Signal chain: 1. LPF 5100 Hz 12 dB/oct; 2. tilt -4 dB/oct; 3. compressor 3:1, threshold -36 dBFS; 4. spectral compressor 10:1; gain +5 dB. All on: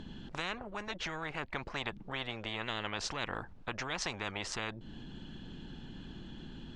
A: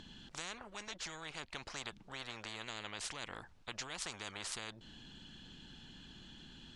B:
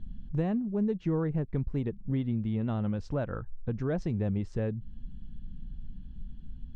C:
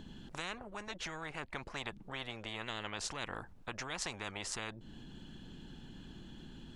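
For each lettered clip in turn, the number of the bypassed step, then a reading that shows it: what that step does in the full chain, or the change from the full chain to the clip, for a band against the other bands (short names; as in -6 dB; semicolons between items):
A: 2, 8 kHz band +9.0 dB; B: 4, 2 kHz band -22.5 dB; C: 1, 8 kHz band +5.0 dB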